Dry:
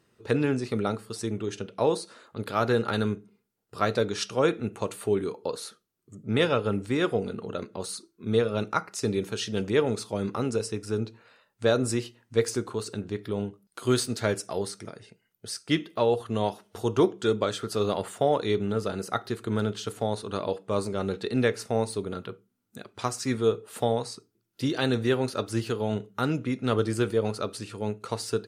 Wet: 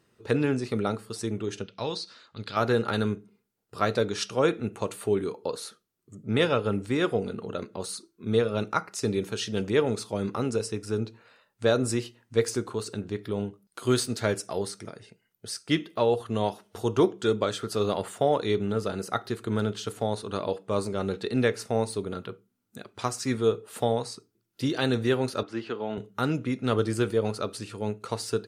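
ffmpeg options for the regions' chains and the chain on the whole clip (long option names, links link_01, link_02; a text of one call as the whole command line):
ffmpeg -i in.wav -filter_complex "[0:a]asettb=1/sr,asplit=3[link_01][link_02][link_03];[link_01]atrim=end=1.644[link_04];[link_02]atrim=start=1.64:end=2.57,asetpts=PTS-STARTPTS,afade=type=in:duration=0.004:curve=qsin,afade=type=out:start_time=0.926:duration=0.004:curve=qsin,lowpass=frequency=4800:width_type=q:width=2.1,equalizer=frequency=470:width_type=o:width=2.6:gain=-9.5[link_05];[link_03]atrim=start=2.566[link_06];[link_04][link_05]acrossfade=duration=0.004:curve1=hsin:curve2=qsin[link_07];[link_07][link_06]acrossfade=duration=0.004:curve1=qsin:curve2=hsin,asettb=1/sr,asplit=3[link_08][link_09][link_10];[link_08]atrim=end=25.434[link_11];[link_09]atrim=start=25.43:end=25.98,asetpts=PTS-STARTPTS,afade=type=in:duration=0.004:curve=qsin,afade=type=out:start_time=0.546:duration=0.004:curve=qsin,highpass=260,lowpass=2900,equalizer=frequency=500:width_type=o:width=0.87:gain=-3.5[link_12];[link_10]atrim=start=25.976[link_13];[link_11][link_12]acrossfade=duration=0.004:curve1=hsin:curve2=qsin[link_14];[link_14][link_13]acrossfade=duration=0.004:curve1=qsin:curve2=hsin" out.wav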